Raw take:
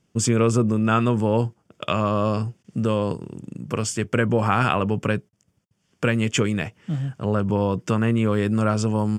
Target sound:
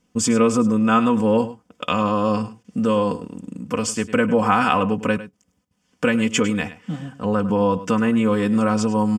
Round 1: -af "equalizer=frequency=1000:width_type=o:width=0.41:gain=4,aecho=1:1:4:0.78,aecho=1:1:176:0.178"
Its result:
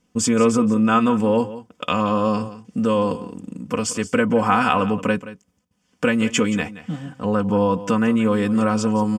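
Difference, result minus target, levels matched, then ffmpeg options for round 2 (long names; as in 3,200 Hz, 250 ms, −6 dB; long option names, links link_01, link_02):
echo 73 ms late
-af "equalizer=frequency=1000:width_type=o:width=0.41:gain=4,aecho=1:1:4:0.78,aecho=1:1:103:0.178"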